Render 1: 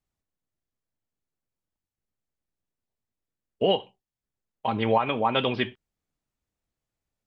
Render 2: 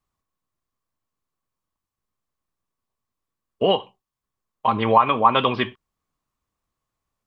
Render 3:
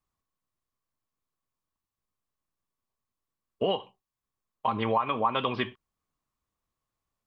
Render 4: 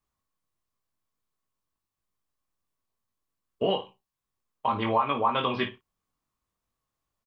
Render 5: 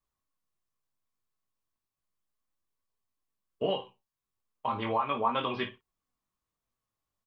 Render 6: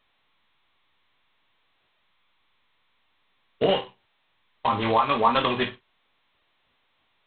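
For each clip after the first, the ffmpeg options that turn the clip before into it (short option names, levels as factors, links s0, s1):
-af "equalizer=f=1100:t=o:w=0.33:g=14.5,volume=1.41"
-af "acompressor=threshold=0.1:ratio=2.5,volume=0.596"
-af "aecho=1:1:21|54:0.562|0.282"
-af "flanger=delay=1.6:depth=8.9:regen=67:speed=0.35:shape=triangular"
-af "volume=2.51" -ar 8000 -c:a adpcm_g726 -b:a 16k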